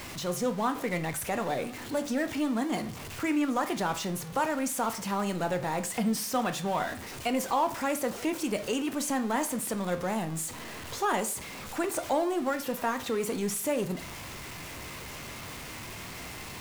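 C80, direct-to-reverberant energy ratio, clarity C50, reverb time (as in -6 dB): 18.5 dB, 8.0 dB, 14.0 dB, 0.45 s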